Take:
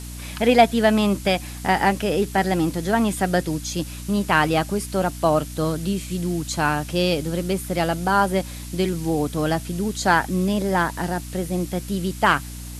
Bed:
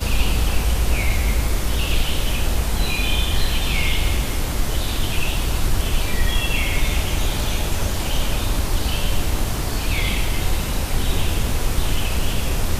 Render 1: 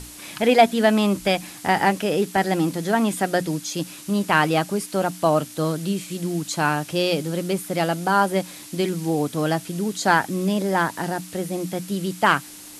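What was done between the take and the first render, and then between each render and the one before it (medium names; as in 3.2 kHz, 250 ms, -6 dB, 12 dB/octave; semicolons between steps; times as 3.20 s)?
hum notches 60/120/180/240 Hz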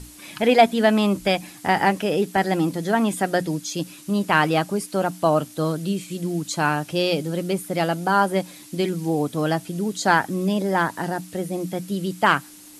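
noise reduction 6 dB, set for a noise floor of -41 dBFS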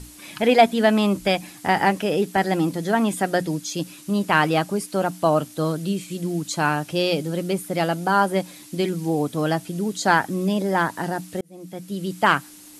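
11.41–12.18 s: fade in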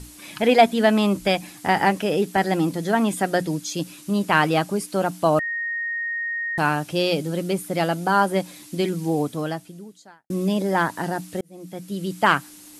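5.39–6.58 s: bleep 1.86 kHz -24 dBFS; 9.20–10.30 s: fade out quadratic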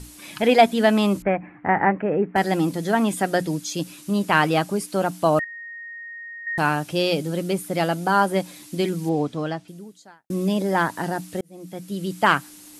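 1.22–2.36 s: steep low-pass 2.2 kHz 48 dB/octave; 5.44–6.47 s: amplifier tone stack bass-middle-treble 5-5-5; 9.09–9.68 s: low-pass 5.1 kHz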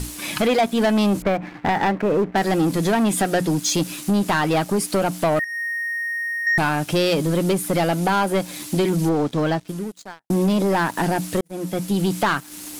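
compression 3:1, threshold -26 dBFS, peak gain reduction 12.5 dB; waveshaping leveller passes 3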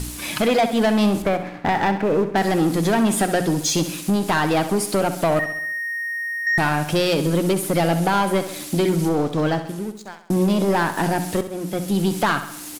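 feedback delay 66 ms, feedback 53%, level -11 dB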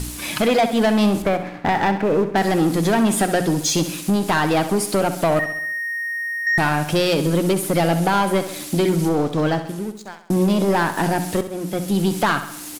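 trim +1 dB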